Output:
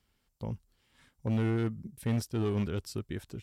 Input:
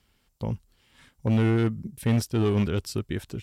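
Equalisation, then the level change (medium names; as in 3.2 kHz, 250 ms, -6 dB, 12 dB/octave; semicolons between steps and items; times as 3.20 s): peaking EQ 2.8 kHz -2 dB; -7.0 dB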